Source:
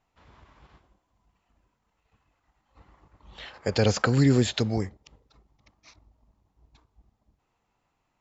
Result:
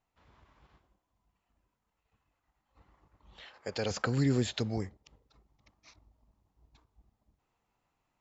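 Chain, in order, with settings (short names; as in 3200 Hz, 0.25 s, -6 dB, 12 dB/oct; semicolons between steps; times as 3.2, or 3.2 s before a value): vocal rider 2 s; 3.4–3.91 low shelf 210 Hz -10.5 dB; gain -8 dB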